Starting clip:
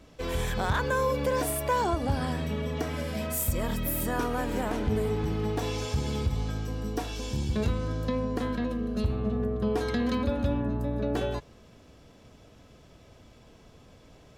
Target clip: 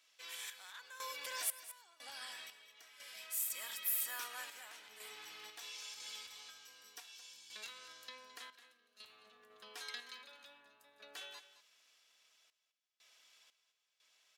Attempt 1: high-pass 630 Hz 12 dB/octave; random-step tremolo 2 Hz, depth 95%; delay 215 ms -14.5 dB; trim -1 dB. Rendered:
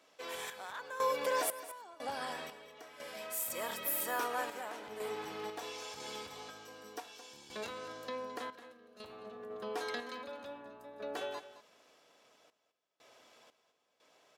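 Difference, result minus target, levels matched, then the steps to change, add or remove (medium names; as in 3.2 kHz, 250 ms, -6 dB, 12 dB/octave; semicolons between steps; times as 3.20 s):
500 Hz band +17.0 dB
change: high-pass 2.3 kHz 12 dB/octave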